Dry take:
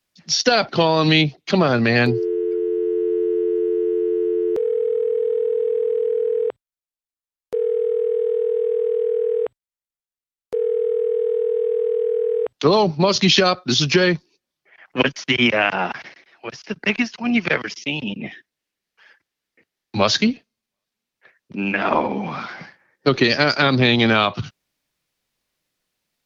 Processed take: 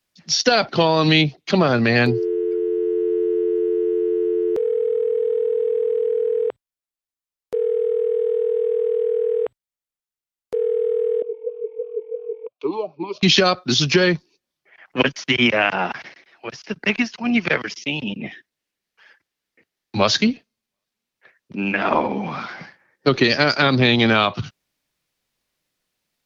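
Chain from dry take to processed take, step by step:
0:11.22–0:13.23: formant filter swept between two vowels a-u 3 Hz

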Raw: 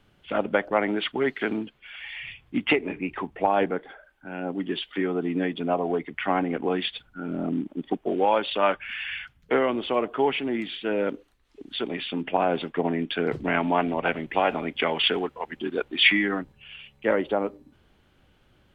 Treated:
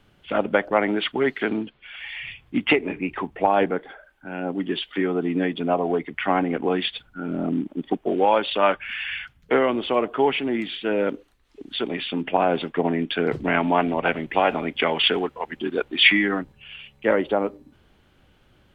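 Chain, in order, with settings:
0:01.41–0:02.00: Chebyshev low-pass filter 4,300 Hz, order 3
level +3 dB

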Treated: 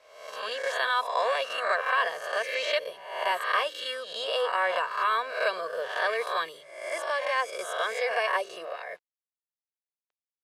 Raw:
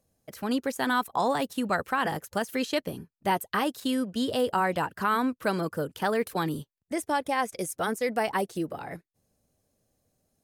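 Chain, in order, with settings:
peak hold with a rise ahead of every peak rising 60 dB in 0.76 s
high-pass filter 140 Hz 12 dB per octave
spectral tilt +4.5 dB per octave
mains-hum notches 50/100/150/200/250/300/350/400 Hz
comb filter 1.8 ms, depth 78%
bit reduction 8 bits
low-pass filter 2,900 Hz 12 dB per octave
low shelf with overshoot 330 Hz −12.5 dB, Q 1.5
level −4.5 dB

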